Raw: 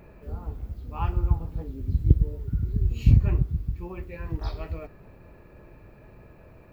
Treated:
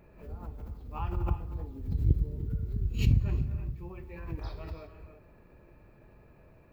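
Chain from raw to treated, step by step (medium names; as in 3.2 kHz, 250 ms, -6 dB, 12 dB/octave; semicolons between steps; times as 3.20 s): gated-style reverb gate 360 ms rising, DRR 7.5 dB; swell ahead of each attack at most 100 dB/s; trim -8 dB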